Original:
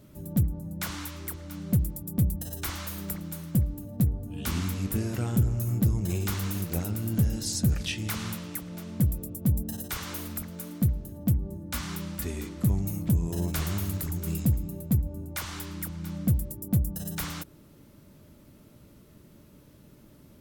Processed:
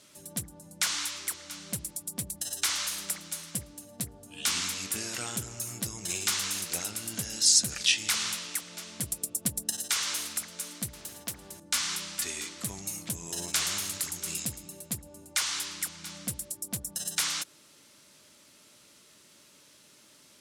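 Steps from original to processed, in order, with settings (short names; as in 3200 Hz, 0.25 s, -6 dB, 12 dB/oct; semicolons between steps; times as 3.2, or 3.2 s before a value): weighting filter ITU-R 468; 9.03–9.7 transient shaper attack +6 dB, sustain 0 dB; 10.93–11.6 spectral compressor 2:1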